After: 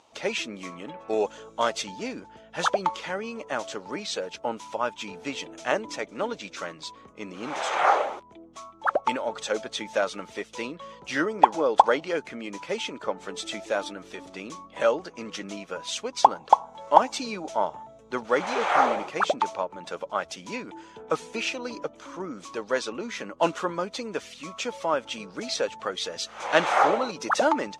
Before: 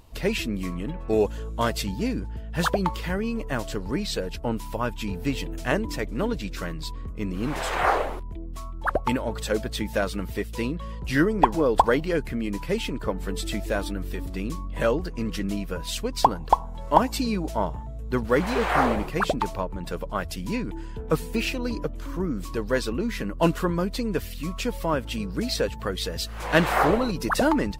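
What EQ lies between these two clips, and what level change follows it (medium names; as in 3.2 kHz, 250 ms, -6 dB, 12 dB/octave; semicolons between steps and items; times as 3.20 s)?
cabinet simulation 290–8800 Hz, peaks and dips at 580 Hz +6 dB, 830 Hz +8 dB, 1.3 kHz +7 dB, 2.3 kHz +5 dB, 3.4 kHz +6 dB, 6.2 kHz +9 dB; -4.5 dB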